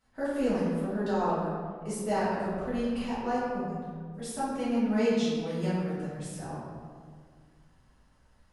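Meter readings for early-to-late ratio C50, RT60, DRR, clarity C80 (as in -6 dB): -2.0 dB, 1.8 s, -12.5 dB, 0.5 dB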